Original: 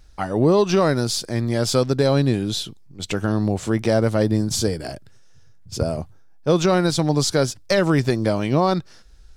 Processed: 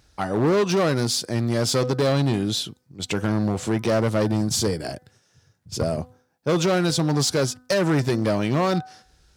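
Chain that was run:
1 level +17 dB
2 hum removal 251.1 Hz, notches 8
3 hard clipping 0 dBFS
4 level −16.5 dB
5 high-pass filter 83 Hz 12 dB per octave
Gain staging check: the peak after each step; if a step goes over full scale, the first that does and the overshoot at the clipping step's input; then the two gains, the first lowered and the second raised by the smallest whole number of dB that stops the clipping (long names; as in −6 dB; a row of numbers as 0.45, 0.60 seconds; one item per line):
+9.5, +9.5, 0.0, −16.5, −10.5 dBFS
step 1, 9.5 dB
step 1 +7 dB, step 4 −6.5 dB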